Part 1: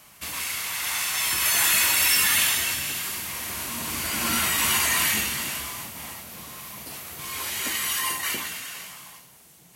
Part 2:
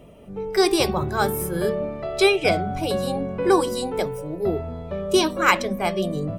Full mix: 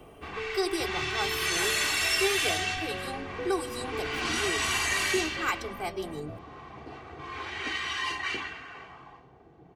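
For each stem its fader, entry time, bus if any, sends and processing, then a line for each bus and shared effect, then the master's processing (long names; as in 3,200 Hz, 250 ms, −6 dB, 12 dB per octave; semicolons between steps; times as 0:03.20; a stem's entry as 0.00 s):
−4.5 dB, 0.00 s, no send, low-pass filter 6,600 Hz 12 dB per octave; low-pass that shuts in the quiet parts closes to 680 Hz, open at −20.5 dBFS
−13.0 dB, 0.00 s, no send, no processing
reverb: not used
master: comb filter 2.6 ms, depth 60%; multiband upward and downward compressor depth 40%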